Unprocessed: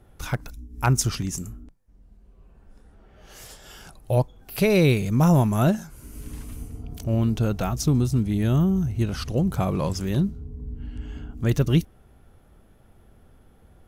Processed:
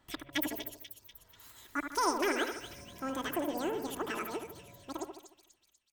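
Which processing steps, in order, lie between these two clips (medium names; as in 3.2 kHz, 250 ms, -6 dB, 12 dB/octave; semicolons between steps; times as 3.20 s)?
fade out at the end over 4.61 s; bass shelf 210 Hz -11.5 dB; comb 7.1 ms, depth 32%; two-band feedback delay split 1.1 kHz, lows 174 ms, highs 571 ms, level -7 dB; speed mistake 33 rpm record played at 78 rpm; trim -8.5 dB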